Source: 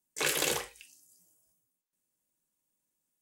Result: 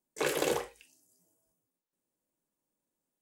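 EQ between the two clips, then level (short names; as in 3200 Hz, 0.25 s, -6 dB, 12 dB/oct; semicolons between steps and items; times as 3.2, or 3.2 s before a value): tone controls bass -9 dB, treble +1 dB; tilt shelf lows +8.5 dB, about 1200 Hz; 0.0 dB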